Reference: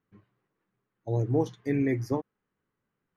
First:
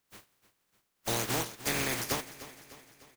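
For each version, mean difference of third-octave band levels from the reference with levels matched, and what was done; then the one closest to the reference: 20.0 dB: spectral contrast lowered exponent 0.23; compressor, threshold -32 dBFS, peak gain reduction 11 dB; feedback echo 0.301 s, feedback 54%, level -15.5 dB; gain +3.5 dB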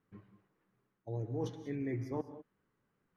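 4.0 dB: high shelf 4500 Hz -8.5 dB; reverse; compressor 10:1, threshold -37 dBFS, peak gain reduction 17 dB; reverse; non-linear reverb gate 0.22 s rising, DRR 11 dB; gain +2.5 dB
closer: second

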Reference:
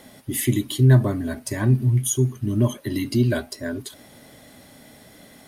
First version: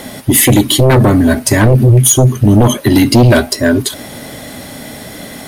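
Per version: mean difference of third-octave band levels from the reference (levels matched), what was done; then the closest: 6.5 dB: in parallel at +2.5 dB: limiter -15.5 dBFS, peak gain reduction 9 dB; on the sum: sine folder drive 8 dB, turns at -3 dBFS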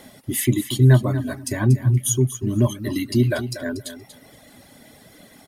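3.0 dB: reverb removal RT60 0.98 s; on a send: feedback echo 0.237 s, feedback 15%, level -11.5 dB; on the sum: gain +2 dB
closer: second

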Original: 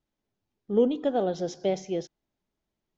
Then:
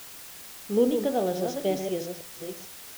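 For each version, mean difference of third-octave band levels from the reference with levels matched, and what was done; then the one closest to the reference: 10.0 dB: reverse delay 0.442 s, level -7 dB; de-hum 56.5 Hz, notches 34; in parallel at -4 dB: requantised 6-bit, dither triangular; on the sum: gain -4 dB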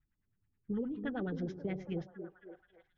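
6.5 dB: LFO low-pass sine 9.5 Hz 390–1800 Hz; EQ curve 120 Hz 0 dB, 610 Hz -28 dB, 1900 Hz -4 dB; compressor, threshold -40 dBFS, peak gain reduction 9 dB; on a send: delay with a stepping band-pass 0.271 s, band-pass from 290 Hz, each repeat 0.7 oct, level -6 dB; on the sum: gain +7 dB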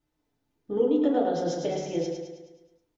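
5.0 dB: compressor, threshold -28 dBFS, peak gain reduction 11 dB; on a send: feedback echo 0.106 s, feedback 54%, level -5 dB; on the sum: FDN reverb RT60 0.43 s, low-frequency decay 0.95×, high-frequency decay 0.5×, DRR -3 dB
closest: third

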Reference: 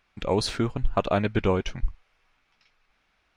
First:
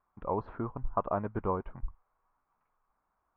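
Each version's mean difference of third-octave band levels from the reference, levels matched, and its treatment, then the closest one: 7.0 dB: ladder low-pass 1200 Hz, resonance 60%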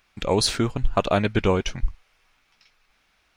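1.5 dB: high shelf 4600 Hz +10 dB; gain +2.5 dB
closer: second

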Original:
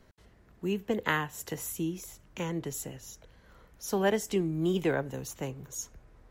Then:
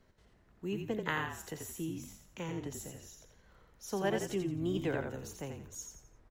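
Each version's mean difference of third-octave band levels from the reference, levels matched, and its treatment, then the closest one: 4.0 dB: bell 12000 Hz -5.5 dB 0.5 oct; frequency-shifting echo 86 ms, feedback 36%, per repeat -41 Hz, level -5.5 dB; gain -6.5 dB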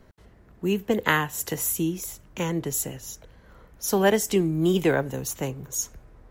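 1.5 dB: high shelf 7600 Hz +7.5 dB; mismatched tape noise reduction decoder only; gain +6.5 dB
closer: second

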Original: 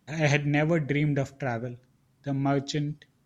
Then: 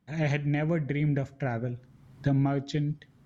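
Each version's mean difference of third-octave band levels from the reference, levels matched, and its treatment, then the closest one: 3.0 dB: recorder AGC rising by 22 dB/s; tone controls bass +4 dB, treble -8 dB; notch 2600 Hz, Q 24; gain -6.5 dB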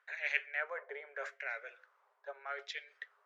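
13.5 dB: reverse; compressor 12:1, threshold -35 dBFS, peak gain reduction 17.5 dB; reverse; LFO band-pass sine 0.82 Hz 900–2300 Hz; rippled Chebyshev high-pass 400 Hz, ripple 6 dB; gain +14 dB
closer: first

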